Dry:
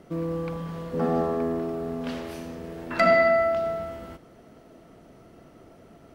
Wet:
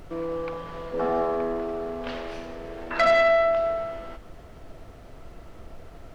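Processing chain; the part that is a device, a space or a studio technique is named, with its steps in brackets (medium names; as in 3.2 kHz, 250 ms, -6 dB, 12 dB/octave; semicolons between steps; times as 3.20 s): aircraft cabin announcement (band-pass 410–4200 Hz; saturation -17 dBFS, distortion -14 dB; brown noise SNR 15 dB); trim +3.5 dB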